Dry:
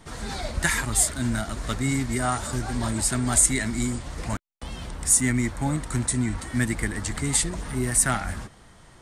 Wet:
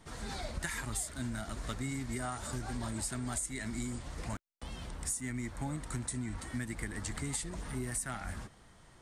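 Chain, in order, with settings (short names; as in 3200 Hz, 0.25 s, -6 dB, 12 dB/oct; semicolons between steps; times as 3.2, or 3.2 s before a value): compressor 12:1, threshold -25 dBFS, peak gain reduction 12 dB; gain -8 dB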